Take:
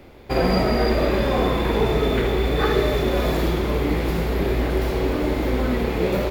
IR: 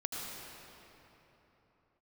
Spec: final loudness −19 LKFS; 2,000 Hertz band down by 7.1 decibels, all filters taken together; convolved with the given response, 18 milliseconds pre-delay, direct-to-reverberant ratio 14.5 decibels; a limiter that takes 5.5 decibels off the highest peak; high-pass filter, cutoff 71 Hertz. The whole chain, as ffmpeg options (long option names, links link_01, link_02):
-filter_complex "[0:a]highpass=71,equalizer=frequency=2000:width_type=o:gain=-9,alimiter=limit=-13.5dB:level=0:latency=1,asplit=2[link_01][link_02];[1:a]atrim=start_sample=2205,adelay=18[link_03];[link_02][link_03]afir=irnorm=-1:irlink=0,volume=-17dB[link_04];[link_01][link_04]amix=inputs=2:normalize=0,volume=4.5dB"